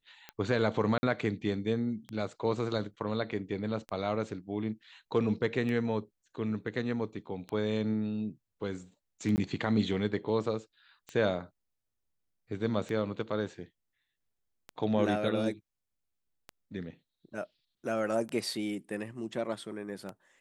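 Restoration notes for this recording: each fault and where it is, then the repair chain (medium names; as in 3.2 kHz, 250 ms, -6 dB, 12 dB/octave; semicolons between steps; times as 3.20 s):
tick 33 1/3 rpm -25 dBFS
0.98–1.03 s: dropout 50 ms
9.36–9.38 s: dropout 19 ms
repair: de-click; interpolate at 0.98 s, 50 ms; interpolate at 9.36 s, 19 ms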